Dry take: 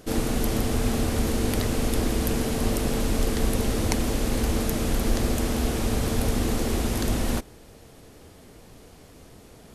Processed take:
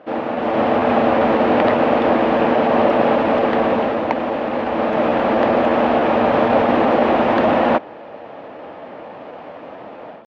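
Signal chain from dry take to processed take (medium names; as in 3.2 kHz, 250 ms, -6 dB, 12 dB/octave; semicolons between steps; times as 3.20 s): level rider gain up to 11 dB; cabinet simulation 380–2300 Hz, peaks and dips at 410 Hz -8 dB, 590 Hz +6 dB, 860 Hz +4 dB, 1.5 kHz -3 dB, 2.1 kHz -5 dB; tempo 0.95×; trim +8.5 dB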